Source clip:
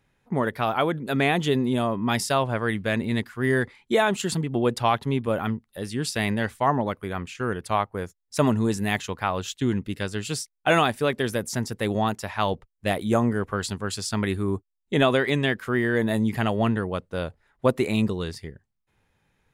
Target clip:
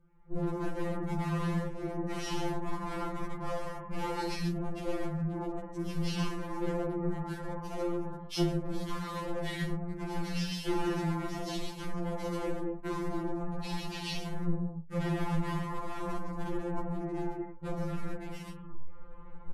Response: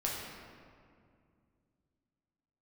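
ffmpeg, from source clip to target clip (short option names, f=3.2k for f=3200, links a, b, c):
-filter_complex "[0:a]adynamicequalizer=threshold=0.00631:dfrequency=1700:dqfactor=6.4:tfrequency=1700:tqfactor=6.4:attack=5:release=100:ratio=0.375:range=3:mode=boostabove:tftype=bell,bandreject=f=1.2k:w=7.7,aecho=1:1:48|137:0.596|0.631,areverse,acompressor=mode=upward:threshold=-37dB:ratio=2.5,areverse,lowshelf=f=500:g=8,aeval=exprs='(tanh(14.1*val(0)+0.1)-tanh(0.1))/14.1':c=same[a];[1:a]atrim=start_sample=2205,afade=t=out:st=0.19:d=0.01,atrim=end_sample=8820[b];[a][b]afir=irnorm=-1:irlink=0,acrossover=split=3900[c][d];[d]acrusher=bits=6:mix=0:aa=0.000001[e];[c][e]amix=inputs=2:normalize=0,asetrate=25476,aresample=44100,atempo=1.73107,acompressor=threshold=-26dB:ratio=6,afftfilt=real='re*2.83*eq(mod(b,8),0)':imag='im*2.83*eq(mod(b,8),0)':win_size=2048:overlap=0.75"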